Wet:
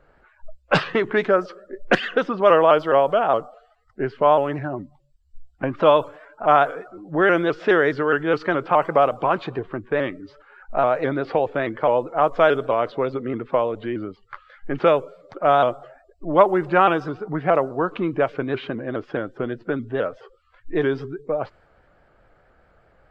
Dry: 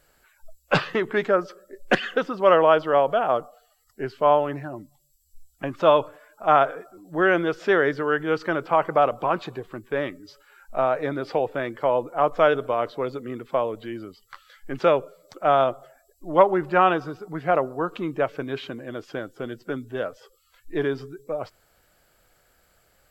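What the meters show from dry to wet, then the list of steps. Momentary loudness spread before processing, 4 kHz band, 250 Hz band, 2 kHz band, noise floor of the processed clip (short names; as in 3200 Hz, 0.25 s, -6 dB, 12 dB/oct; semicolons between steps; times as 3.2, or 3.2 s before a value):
15 LU, +2.0 dB, +3.5 dB, +2.5 dB, -59 dBFS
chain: low-pass opened by the level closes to 1500 Hz, open at -13.5 dBFS; in parallel at +3 dB: compressor, threshold -30 dBFS, peak gain reduction 19 dB; on the sum: shaped vibrato saw up 4.8 Hz, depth 100 cents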